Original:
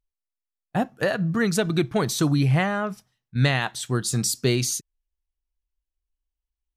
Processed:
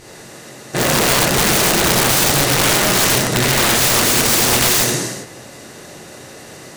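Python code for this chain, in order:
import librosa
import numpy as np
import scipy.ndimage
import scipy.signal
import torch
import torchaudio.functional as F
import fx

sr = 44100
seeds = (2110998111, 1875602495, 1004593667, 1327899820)

y = fx.bin_compress(x, sr, power=0.2)
y = fx.level_steps(y, sr, step_db=24)
y = fx.rev_gated(y, sr, seeds[0], gate_ms=470, shape='falling', drr_db=-7.0)
y = (np.mod(10.0 ** (12.5 / 20.0) * y + 1.0, 2.0) - 1.0) / 10.0 ** (12.5 / 20.0)
y = y * librosa.db_to_amplitude(4.0)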